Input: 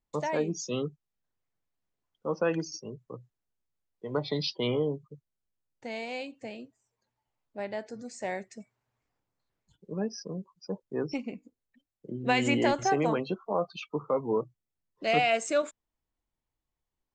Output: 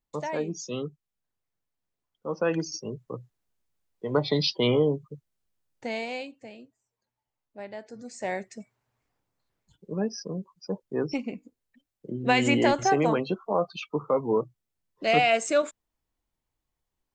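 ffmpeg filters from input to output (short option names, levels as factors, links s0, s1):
-af "volume=4.73,afade=t=in:st=2.28:d=0.63:silence=0.446684,afade=t=out:st=5.86:d=0.56:silence=0.316228,afade=t=in:st=7.83:d=0.51:silence=0.421697"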